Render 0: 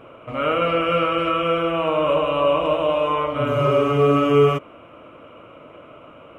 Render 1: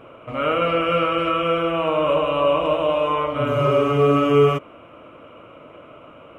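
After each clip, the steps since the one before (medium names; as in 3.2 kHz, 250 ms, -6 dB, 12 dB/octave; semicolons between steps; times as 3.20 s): no audible change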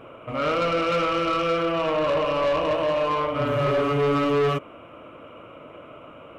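tracing distortion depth 0.024 ms; saturation -18 dBFS, distortion -11 dB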